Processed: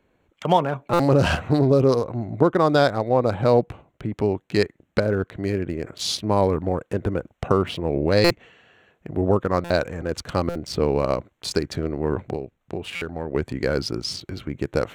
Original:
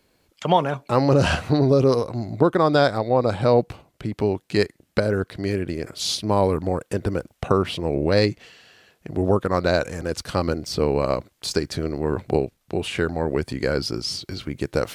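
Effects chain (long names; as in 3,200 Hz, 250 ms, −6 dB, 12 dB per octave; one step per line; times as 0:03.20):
adaptive Wiener filter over 9 samples
0:12.26–0:13.35: downward compressor 3 to 1, threshold −27 dBFS, peak gain reduction 10 dB
buffer that repeats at 0:00.93/0:08.24/0:09.64/0:10.49/0:12.95, samples 256, times 10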